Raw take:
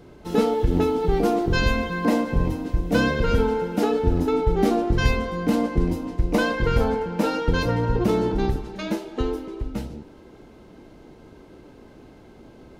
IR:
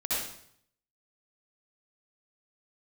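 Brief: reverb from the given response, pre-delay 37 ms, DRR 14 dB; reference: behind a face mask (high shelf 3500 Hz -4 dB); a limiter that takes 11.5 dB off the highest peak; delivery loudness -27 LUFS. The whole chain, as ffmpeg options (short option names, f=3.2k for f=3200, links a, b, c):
-filter_complex "[0:a]alimiter=limit=-17.5dB:level=0:latency=1,asplit=2[a][b];[1:a]atrim=start_sample=2205,adelay=37[c];[b][c]afir=irnorm=-1:irlink=0,volume=-21.5dB[d];[a][d]amix=inputs=2:normalize=0,highshelf=f=3.5k:g=-4,volume=0.5dB"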